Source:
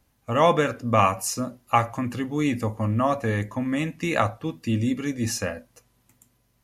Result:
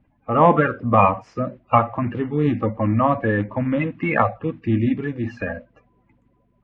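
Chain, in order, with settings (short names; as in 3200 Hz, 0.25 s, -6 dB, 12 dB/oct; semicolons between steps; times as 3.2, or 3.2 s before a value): bin magnitudes rounded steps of 30 dB; LPF 2500 Hz 24 dB/oct; 4.99–5.5 compressor 2:1, threshold -29 dBFS, peak gain reduction 4.5 dB; gain +5 dB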